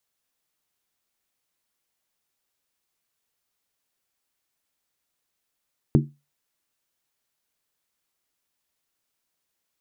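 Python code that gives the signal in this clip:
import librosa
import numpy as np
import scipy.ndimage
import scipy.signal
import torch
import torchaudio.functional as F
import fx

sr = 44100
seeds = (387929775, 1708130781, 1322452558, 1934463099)

y = fx.strike_skin(sr, length_s=0.63, level_db=-12, hz=144.0, decay_s=0.26, tilt_db=3, modes=5)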